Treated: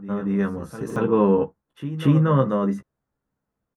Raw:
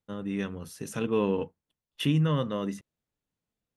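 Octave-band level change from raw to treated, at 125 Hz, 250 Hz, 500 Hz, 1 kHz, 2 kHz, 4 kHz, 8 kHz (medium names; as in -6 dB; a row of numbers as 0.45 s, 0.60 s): +7.5 dB, +8.5 dB, +9.0 dB, +10.5 dB, +4.5 dB, -5.5 dB, no reading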